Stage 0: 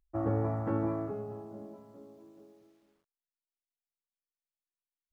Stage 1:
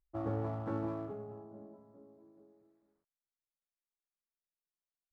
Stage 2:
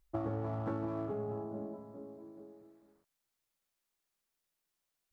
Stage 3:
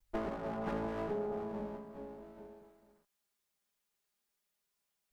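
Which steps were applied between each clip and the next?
local Wiener filter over 15 samples; dynamic bell 1.4 kHz, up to +3 dB, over -52 dBFS, Q 0.72; trim -6 dB
compression 12:1, threshold -43 dBFS, peak gain reduction 12.5 dB; trim +10 dB
comb filter that takes the minimum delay 4.9 ms; trim +2 dB

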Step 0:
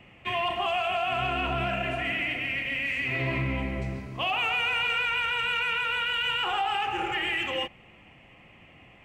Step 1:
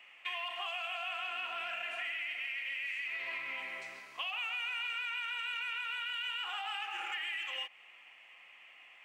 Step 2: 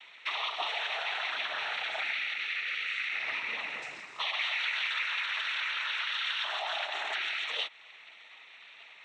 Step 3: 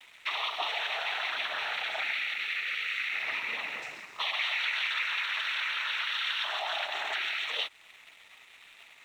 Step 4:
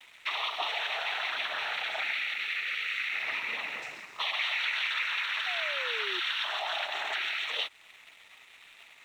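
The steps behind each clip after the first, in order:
high-pass 1.3 kHz 12 dB/octave; compression, threshold -36 dBFS, peak gain reduction 10 dB
noise-vocoded speech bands 12; trim +5.5 dB
crossover distortion -59.5 dBFS; trim +1.5 dB
painted sound fall, 5.46–6.20 s, 350–760 Hz -43 dBFS

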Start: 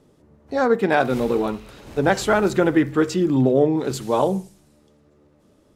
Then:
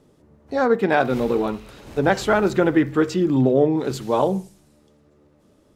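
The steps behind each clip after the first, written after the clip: dynamic bell 9.6 kHz, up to -6 dB, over -47 dBFS, Q 0.83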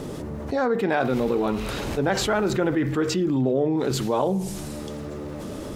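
level flattener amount 70%; trim -7.5 dB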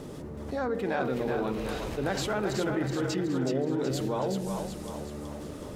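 two-band feedback delay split 470 Hz, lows 164 ms, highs 373 ms, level -5 dB; trim -8 dB

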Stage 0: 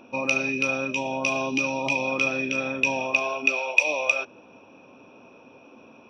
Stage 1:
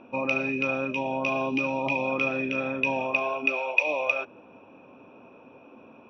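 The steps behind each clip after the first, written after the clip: low-pass 2.4 kHz 12 dB/octave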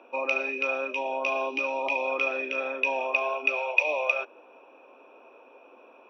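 high-pass 380 Hz 24 dB/octave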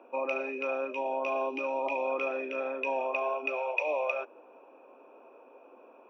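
peaking EQ 4.3 kHz -13 dB 2.2 oct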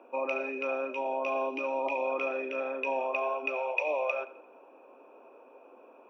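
feedback echo behind a low-pass 86 ms, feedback 44%, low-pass 3.7 kHz, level -16.5 dB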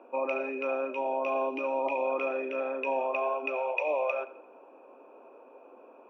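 treble shelf 3.4 kHz -10 dB; trim +2 dB

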